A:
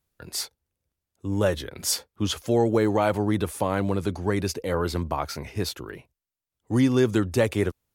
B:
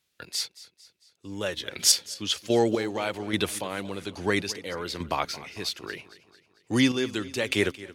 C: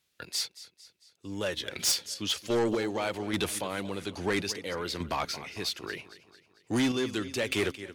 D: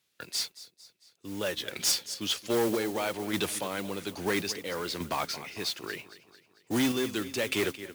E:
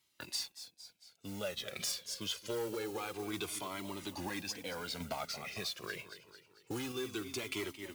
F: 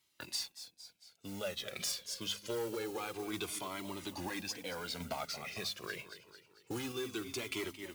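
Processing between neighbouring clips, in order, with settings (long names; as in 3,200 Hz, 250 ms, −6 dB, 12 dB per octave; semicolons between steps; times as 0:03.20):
meter weighting curve D; square-wave tremolo 1.2 Hz, depth 60%, duty 30%; feedback echo with a swinging delay time 224 ms, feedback 50%, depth 62 cents, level −18 dB
soft clipping −22 dBFS, distortion −9 dB
high-pass filter 110 Hz; gain on a spectral selection 0:00.57–0:00.89, 740–3,400 Hz −7 dB; noise that follows the level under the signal 14 dB
notch filter 1,800 Hz, Q 15; downward compressor 4 to 1, threshold −37 dBFS, peak gain reduction 12 dB; flanger whose copies keep moving one way falling 0.26 Hz; level +4 dB
hum removal 51.13 Hz, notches 5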